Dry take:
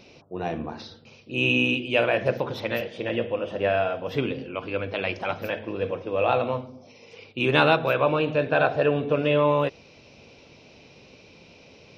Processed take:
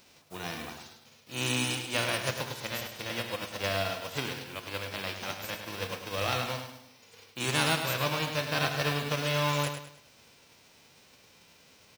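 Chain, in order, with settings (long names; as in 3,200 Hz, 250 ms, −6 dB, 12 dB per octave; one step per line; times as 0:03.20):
spectral envelope flattened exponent 0.3
on a send: repeating echo 103 ms, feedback 36%, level −8 dB
on the sum: level −8.5 dB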